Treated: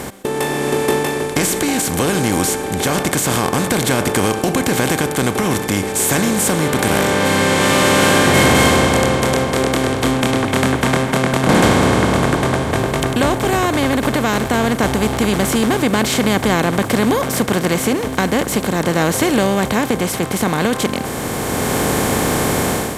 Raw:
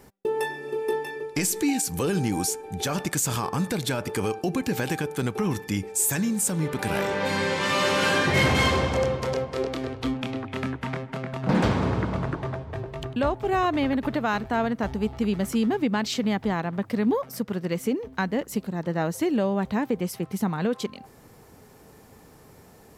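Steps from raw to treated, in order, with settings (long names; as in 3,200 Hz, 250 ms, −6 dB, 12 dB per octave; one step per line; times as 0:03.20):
compressor on every frequency bin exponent 0.4
automatic gain control
level −1 dB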